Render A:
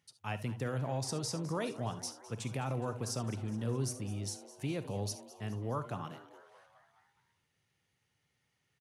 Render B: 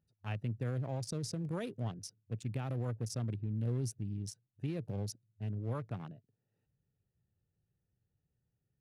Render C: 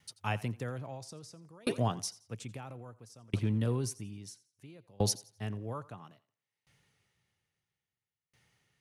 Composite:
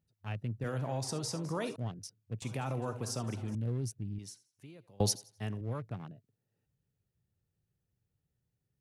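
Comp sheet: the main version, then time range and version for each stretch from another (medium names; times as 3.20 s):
B
0.64–1.76 s: from A
2.42–3.55 s: from A
4.19–5.61 s: from C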